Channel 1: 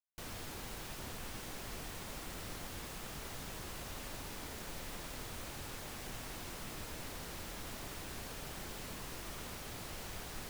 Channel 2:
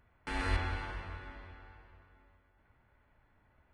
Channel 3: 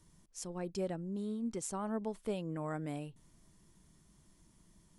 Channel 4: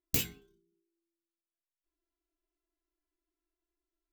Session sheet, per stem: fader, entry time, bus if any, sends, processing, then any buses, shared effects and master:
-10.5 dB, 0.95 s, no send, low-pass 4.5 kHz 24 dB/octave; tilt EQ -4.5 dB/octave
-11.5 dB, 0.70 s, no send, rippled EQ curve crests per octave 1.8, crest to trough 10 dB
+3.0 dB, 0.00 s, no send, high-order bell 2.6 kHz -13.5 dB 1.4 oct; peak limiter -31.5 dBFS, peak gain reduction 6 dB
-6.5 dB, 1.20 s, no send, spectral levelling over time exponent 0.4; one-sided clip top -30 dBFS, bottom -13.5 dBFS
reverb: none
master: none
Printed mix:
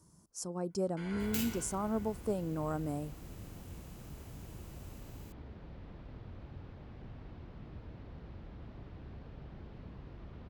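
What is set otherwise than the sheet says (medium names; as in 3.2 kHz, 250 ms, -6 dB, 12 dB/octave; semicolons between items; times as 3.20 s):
stem 3: missing peak limiter -31.5 dBFS, peak gain reduction 6 dB; master: extra high-pass 68 Hz 12 dB/octave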